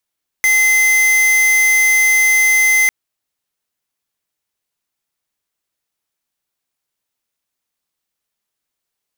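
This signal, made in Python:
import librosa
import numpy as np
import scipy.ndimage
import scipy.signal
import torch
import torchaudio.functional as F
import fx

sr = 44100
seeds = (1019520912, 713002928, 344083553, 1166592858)

y = fx.tone(sr, length_s=2.45, wave='square', hz=2060.0, level_db=-12.0)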